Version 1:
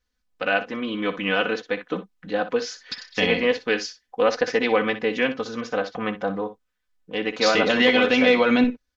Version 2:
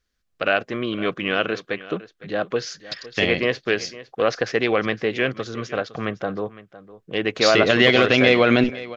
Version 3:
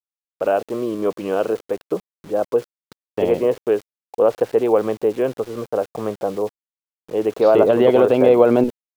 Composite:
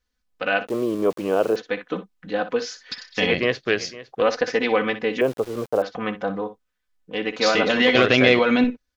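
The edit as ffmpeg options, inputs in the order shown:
-filter_complex "[2:a]asplit=2[a][b];[1:a]asplit=2[c][d];[0:a]asplit=5[e][f][g][h][i];[e]atrim=end=0.672[j];[a]atrim=start=0.668:end=1.562[k];[f]atrim=start=1.558:end=3.322[l];[c]atrim=start=3.318:end=4.222[m];[g]atrim=start=4.218:end=5.212[n];[b]atrim=start=5.208:end=5.822[o];[h]atrim=start=5.818:end=7.952[p];[d]atrim=start=7.948:end=8.392[q];[i]atrim=start=8.388[r];[j][k]acrossfade=d=0.004:c1=hsin:c2=hsin[s];[s][l]acrossfade=d=0.004:c1=hsin:c2=hsin[t];[t][m]acrossfade=d=0.004:c1=hsin:c2=hsin[u];[u][n]acrossfade=d=0.004:c1=hsin:c2=hsin[v];[v][o]acrossfade=d=0.004:c1=hsin:c2=hsin[w];[w][p]acrossfade=d=0.004:c1=hsin:c2=hsin[x];[x][q]acrossfade=d=0.004:c1=hsin:c2=hsin[y];[y][r]acrossfade=d=0.004:c1=hsin:c2=hsin"

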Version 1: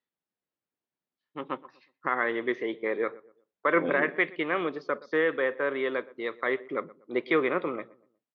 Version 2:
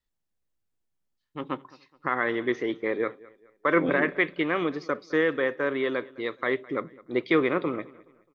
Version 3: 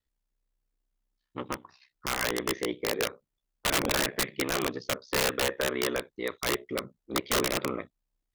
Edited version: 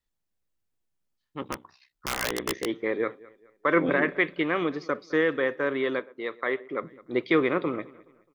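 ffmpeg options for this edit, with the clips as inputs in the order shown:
-filter_complex "[1:a]asplit=3[a][b][c];[a]atrim=end=1.422[d];[2:a]atrim=start=1.418:end=2.662[e];[b]atrim=start=2.658:end=5.992[f];[0:a]atrim=start=5.988:end=6.832[g];[c]atrim=start=6.828[h];[d][e]acrossfade=d=0.004:c1=hsin:c2=hsin[i];[i][f]acrossfade=d=0.004:c1=hsin:c2=hsin[j];[j][g]acrossfade=d=0.004:c1=hsin:c2=hsin[k];[k][h]acrossfade=d=0.004:c1=hsin:c2=hsin"

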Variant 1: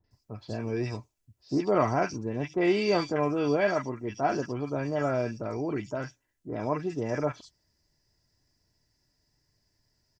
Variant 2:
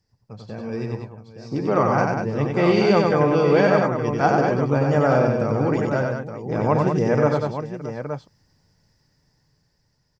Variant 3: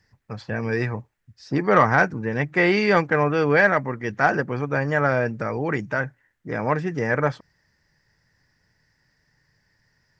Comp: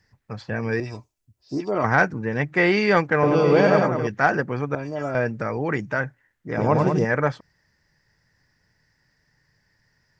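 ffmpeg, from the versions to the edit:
-filter_complex "[0:a]asplit=2[a][b];[1:a]asplit=2[c][d];[2:a]asplit=5[e][f][g][h][i];[e]atrim=end=0.802[j];[a]atrim=start=0.798:end=1.842[k];[f]atrim=start=1.838:end=3.232[l];[c]atrim=start=3.228:end=4.072[m];[g]atrim=start=4.068:end=4.752[n];[b]atrim=start=4.748:end=5.152[o];[h]atrim=start=5.148:end=6.572[p];[d]atrim=start=6.568:end=7.052[q];[i]atrim=start=7.048[r];[j][k]acrossfade=d=0.004:c1=hsin:c2=hsin[s];[s][l]acrossfade=d=0.004:c1=hsin:c2=hsin[t];[t][m]acrossfade=d=0.004:c1=hsin:c2=hsin[u];[u][n]acrossfade=d=0.004:c1=hsin:c2=hsin[v];[v][o]acrossfade=d=0.004:c1=hsin:c2=hsin[w];[w][p]acrossfade=d=0.004:c1=hsin:c2=hsin[x];[x][q]acrossfade=d=0.004:c1=hsin:c2=hsin[y];[y][r]acrossfade=d=0.004:c1=hsin:c2=hsin"

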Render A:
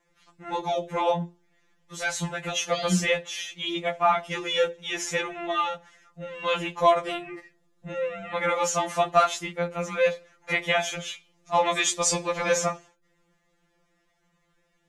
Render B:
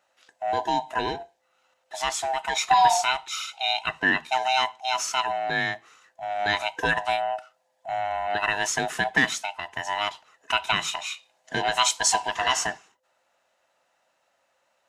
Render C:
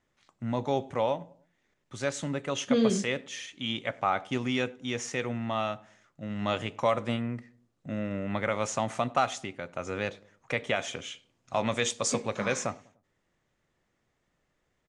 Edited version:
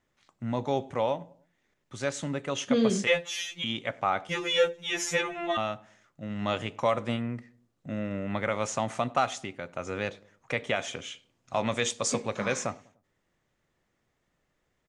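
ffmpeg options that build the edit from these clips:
-filter_complex "[0:a]asplit=2[a][b];[2:a]asplit=3[c][d][e];[c]atrim=end=3.072[f];[a]atrim=start=3.068:end=3.642[g];[d]atrim=start=3.638:end=4.292[h];[b]atrim=start=4.288:end=5.572[i];[e]atrim=start=5.568[j];[f][g]acrossfade=d=0.004:c1=hsin:c2=hsin[k];[k][h]acrossfade=d=0.004:c1=hsin:c2=hsin[l];[l][i]acrossfade=d=0.004:c1=hsin:c2=hsin[m];[m][j]acrossfade=d=0.004:c1=hsin:c2=hsin"

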